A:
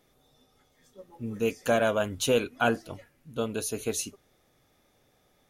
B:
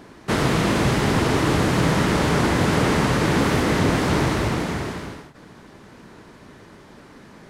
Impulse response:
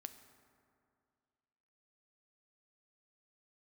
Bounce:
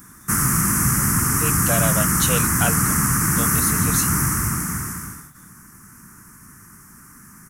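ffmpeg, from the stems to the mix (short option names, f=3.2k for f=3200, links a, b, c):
-filter_complex "[0:a]highpass=650,volume=2.5dB[a];[1:a]firequalizer=gain_entry='entry(190,0);entry(540,-26);entry(1200,3);entry(1700,-1);entry(3700,-27);entry(5600,3);entry(11000,14)':delay=0.05:min_phase=1,volume=0.5dB[b];[a][b]amix=inputs=2:normalize=0,highshelf=f=7.4k:g=12"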